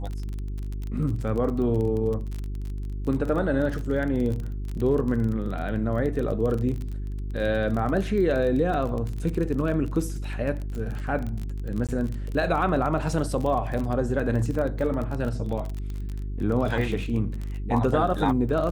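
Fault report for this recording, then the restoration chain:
crackle 28 per s -29 dBFS
hum 50 Hz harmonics 8 -31 dBFS
11.87–11.89 s: dropout 17 ms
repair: de-click; de-hum 50 Hz, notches 8; interpolate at 11.87 s, 17 ms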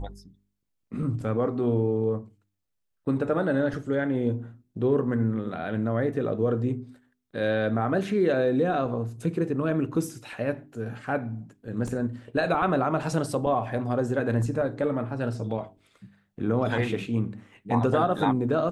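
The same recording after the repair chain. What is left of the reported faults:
nothing left

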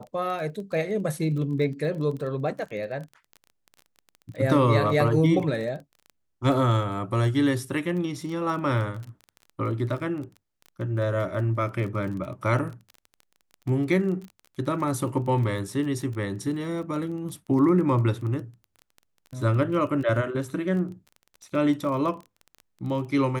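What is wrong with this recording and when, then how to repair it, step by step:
crackle 21 per s -34 dBFS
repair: de-click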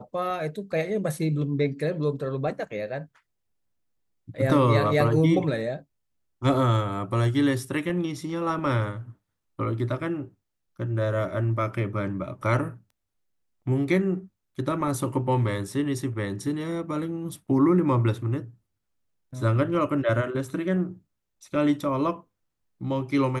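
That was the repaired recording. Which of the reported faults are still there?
nothing left

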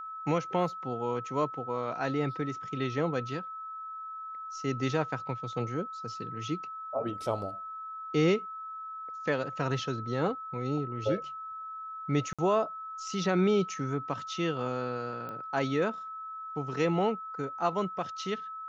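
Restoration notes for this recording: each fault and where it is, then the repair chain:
whine 1.3 kHz -38 dBFS
12.33–12.39 s: dropout 56 ms
15.29 s: pop -28 dBFS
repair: de-click; band-stop 1.3 kHz, Q 30; interpolate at 12.33 s, 56 ms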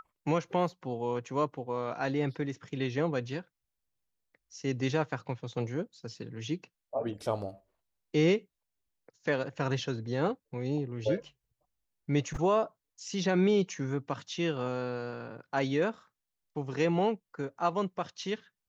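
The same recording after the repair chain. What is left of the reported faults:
nothing left

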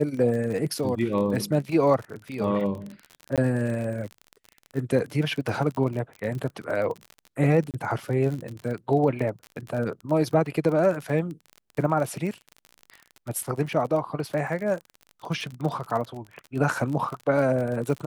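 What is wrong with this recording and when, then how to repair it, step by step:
crackle 40 per s -31 dBFS
3.36–3.38 s: dropout 17 ms
7.71–7.74 s: dropout 28 ms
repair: de-click; interpolate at 3.36 s, 17 ms; interpolate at 7.71 s, 28 ms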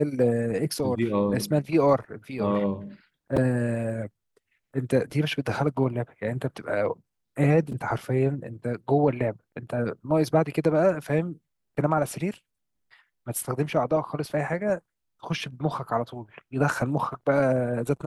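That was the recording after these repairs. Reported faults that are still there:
nothing left

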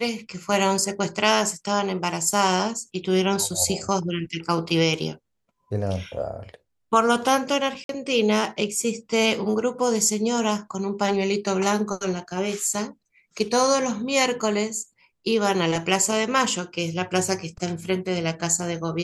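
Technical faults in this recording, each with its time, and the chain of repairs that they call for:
7.84–7.89 s: dropout 52 ms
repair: interpolate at 7.84 s, 52 ms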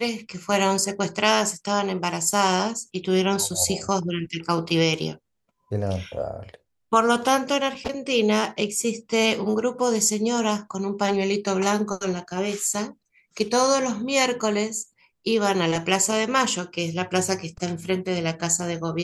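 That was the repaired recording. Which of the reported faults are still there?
nothing left

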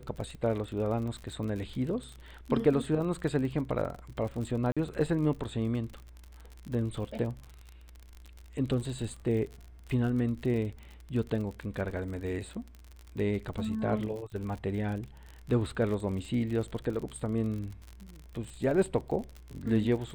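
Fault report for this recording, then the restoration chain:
crackle 49 per s -37 dBFS
4.72–4.77 s: dropout 46 ms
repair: de-click; interpolate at 4.72 s, 46 ms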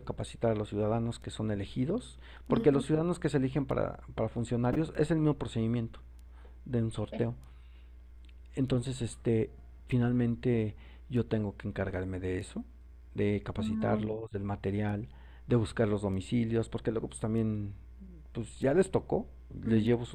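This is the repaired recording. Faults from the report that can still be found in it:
nothing left

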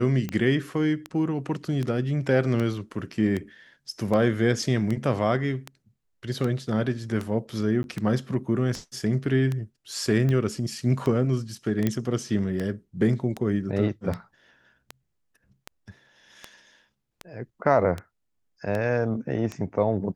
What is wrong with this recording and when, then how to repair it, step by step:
tick 78 rpm -17 dBFS
7.83–7.84 s: dropout 11 ms
11.87 s: pop -11 dBFS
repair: de-click; interpolate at 7.83 s, 11 ms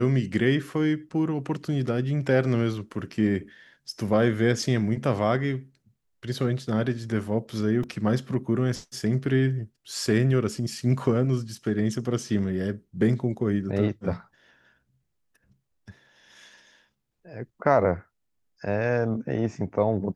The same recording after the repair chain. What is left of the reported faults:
nothing left

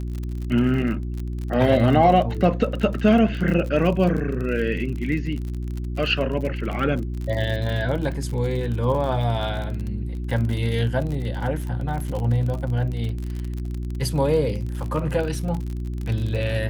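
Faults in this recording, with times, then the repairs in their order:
crackle 45 per s -28 dBFS
hum 60 Hz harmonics 6 -28 dBFS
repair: de-click; de-hum 60 Hz, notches 6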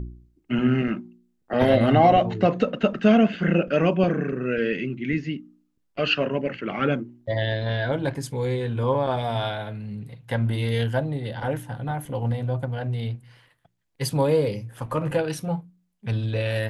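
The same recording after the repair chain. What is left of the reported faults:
nothing left

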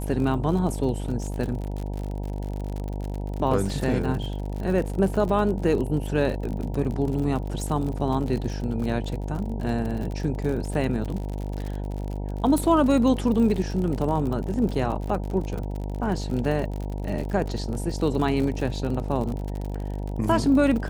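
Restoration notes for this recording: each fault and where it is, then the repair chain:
buzz 50 Hz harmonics 19 -30 dBFS
crackle 54 per s -30 dBFS
12.58 s: pop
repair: de-click; de-hum 50 Hz, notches 19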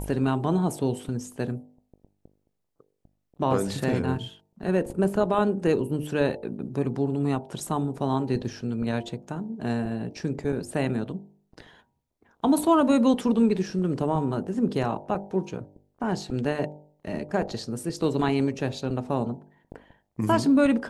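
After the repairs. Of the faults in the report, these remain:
12.58 s: pop

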